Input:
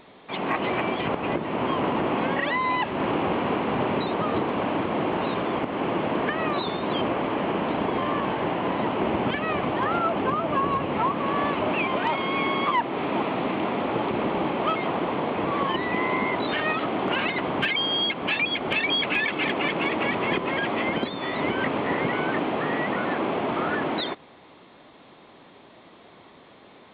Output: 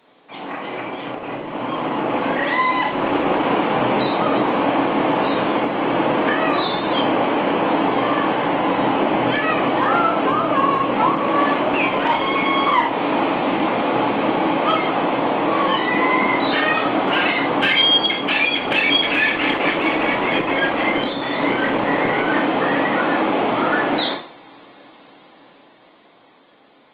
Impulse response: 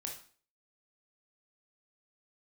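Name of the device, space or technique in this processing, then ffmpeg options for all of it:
far-field microphone of a smart speaker: -filter_complex "[0:a]bass=frequency=250:gain=-5,treble=frequency=4000:gain=1,bandreject=frequency=390:width=12[link_01];[1:a]atrim=start_sample=2205[link_02];[link_01][link_02]afir=irnorm=-1:irlink=0,highpass=frequency=120:width=0.5412,highpass=frequency=120:width=1.3066,dynaudnorm=framelen=130:gausssize=31:maxgain=10dB" -ar 48000 -c:a libopus -b:a 20k

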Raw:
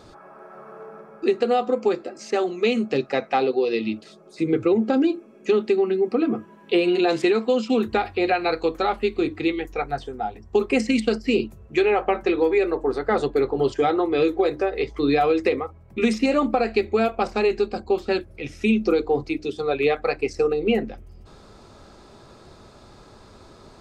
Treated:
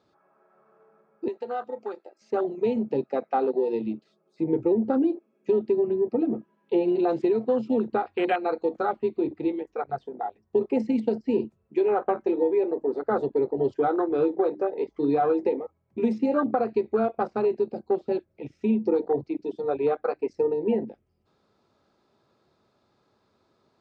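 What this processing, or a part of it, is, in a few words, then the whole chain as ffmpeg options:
over-cleaned archive recording: -filter_complex "[0:a]highpass=120,lowpass=5400,afwtdn=0.0562,asettb=1/sr,asplit=3[link_01][link_02][link_03];[link_01]atrim=end=1.284[link_04];[link_02]atrim=start=1.28:end=2.22,asetpts=PTS-STARTPTS,afade=type=in:duration=0.004:curve=qsin,afade=type=out:start_time=0.936:duration=0.004:curve=qsin,highpass=frequency=1300:poles=1[link_05];[link_03]atrim=start=2.216[link_06];[link_04][link_05]acrossfade=duration=0.004:curve1=hsin:curve2=qsin[link_07];[link_07][link_06]acrossfade=duration=0.004:curve1=qsin:curve2=hsin,volume=-3dB"

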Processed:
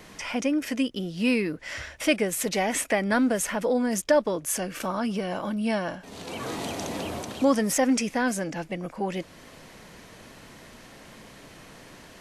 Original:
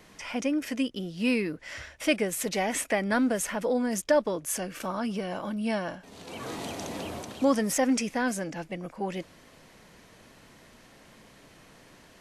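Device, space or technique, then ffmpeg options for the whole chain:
parallel compression: -filter_complex "[0:a]asplit=2[link_01][link_02];[link_02]acompressor=threshold=-42dB:ratio=6,volume=-2dB[link_03];[link_01][link_03]amix=inputs=2:normalize=0,volume=1.5dB"

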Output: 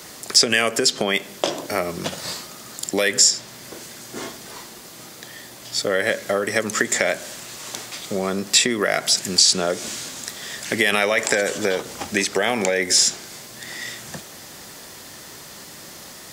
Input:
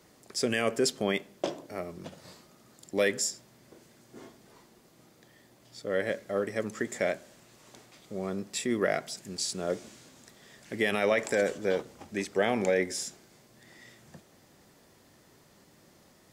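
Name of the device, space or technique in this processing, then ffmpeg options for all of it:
mastering chain: -filter_complex "[0:a]equalizer=frequency=2300:width_type=o:width=0.77:gain=-2,acrossover=split=100|7000[link_01][link_02][link_03];[link_01]acompressor=threshold=-59dB:ratio=4[link_04];[link_02]acompressor=threshold=-28dB:ratio=4[link_05];[link_03]acompressor=threshold=-51dB:ratio=4[link_06];[link_04][link_05][link_06]amix=inputs=3:normalize=0,acompressor=threshold=-36dB:ratio=2.5,tiltshelf=frequency=970:gain=-6,alimiter=level_in=20dB:limit=-1dB:release=50:level=0:latency=1,volume=-1dB"

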